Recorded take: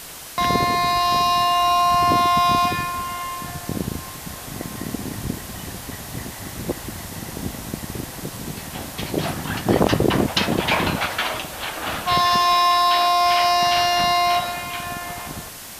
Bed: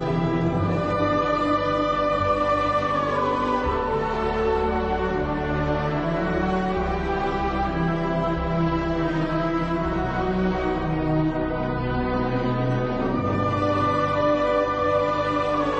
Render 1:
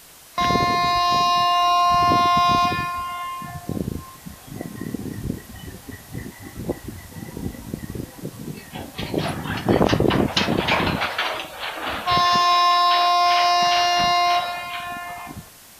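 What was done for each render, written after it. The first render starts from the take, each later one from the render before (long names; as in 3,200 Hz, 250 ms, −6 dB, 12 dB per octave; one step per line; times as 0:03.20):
noise reduction from a noise print 9 dB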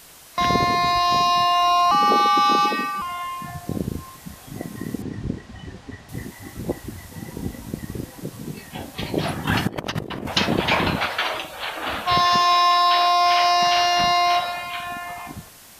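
0:01.91–0:03.02: frequency shifter +120 Hz
0:05.02–0:06.09: high-frequency loss of the air 110 metres
0:09.47–0:10.28: compressor whose output falls as the input rises −25 dBFS, ratio −0.5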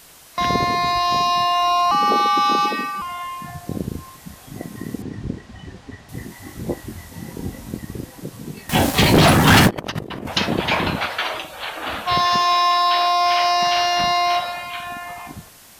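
0:06.28–0:07.77: double-tracking delay 23 ms −5.5 dB
0:08.69–0:09.71: leveller curve on the samples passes 5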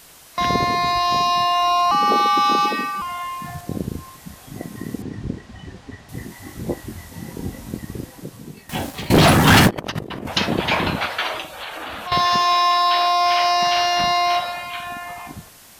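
0:02.09–0:03.61: mu-law and A-law mismatch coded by mu
0:08.01–0:09.10: fade out, to −20 dB
0:11.56–0:12.12: downward compressor, threshold −27 dBFS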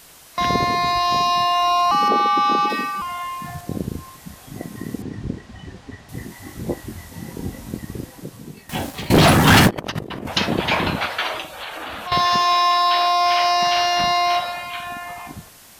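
0:02.08–0:02.70: high-shelf EQ 4,700 Hz −10 dB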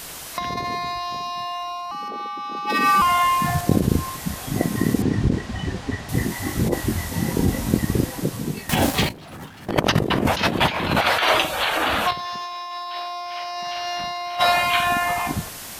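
in parallel at −3 dB: brickwall limiter −13 dBFS, peak gain reduction 8.5 dB
on the sum: compressor whose output falls as the input rises −21 dBFS, ratio −0.5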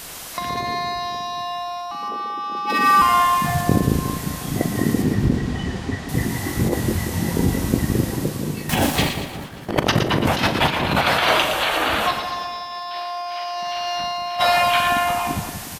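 double-tracking delay 41 ms −13 dB
echo with a time of its own for lows and highs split 870 Hz, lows 180 ms, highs 116 ms, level −7.5 dB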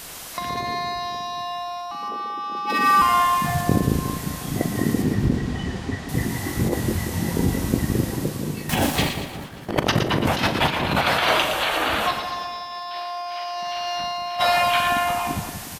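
level −2 dB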